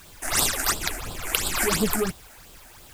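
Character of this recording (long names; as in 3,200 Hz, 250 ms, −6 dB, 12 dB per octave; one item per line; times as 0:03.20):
phaser sweep stages 8, 2.9 Hz, lowest notch 130–2,000 Hz
a quantiser's noise floor 10 bits, dither triangular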